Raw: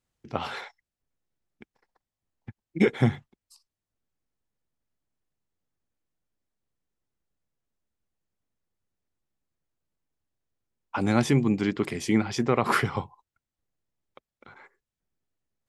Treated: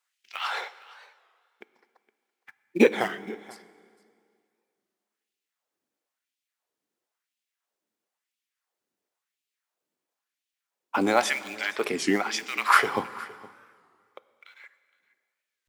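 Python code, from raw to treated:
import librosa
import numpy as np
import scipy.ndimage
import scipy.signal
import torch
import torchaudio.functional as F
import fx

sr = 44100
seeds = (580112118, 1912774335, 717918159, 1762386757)

p1 = fx.peak_eq(x, sr, hz=270.0, db=-3.5, octaves=2.2)
p2 = fx.quant_float(p1, sr, bits=2)
p3 = p1 + (p2 * 10.0 ** (-8.0 / 20.0))
p4 = fx.filter_lfo_highpass(p3, sr, shape='sine', hz=0.98, low_hz=270.0, high_hz=2800.0, q=1.8)
p5 = p4 + fx.echo_single(p4, sr, ms=465, db=-21.0, dry=0)
p6 = fx.rev_plate(p5, sr, seeds[0], rt60_s=2.2, hf_ratio=0.9, predelay_ms=0, drr_db=16.0)
p7 = fx.record_warp(p6, sr, rpm=33.33, depth_cents=160.0)
y = p7 * 10.0 ** (1.0 / 20.0)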